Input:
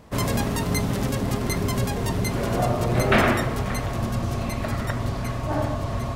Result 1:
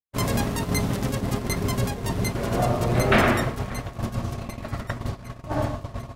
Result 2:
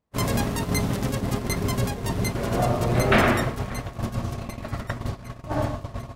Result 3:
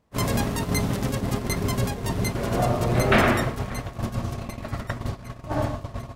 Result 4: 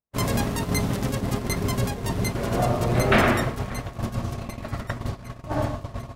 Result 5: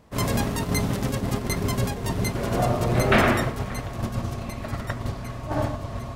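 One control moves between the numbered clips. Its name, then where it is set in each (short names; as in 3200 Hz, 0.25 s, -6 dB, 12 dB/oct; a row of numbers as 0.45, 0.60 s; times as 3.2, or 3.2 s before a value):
gate, range: -60, -31, -19, -47, -6 dB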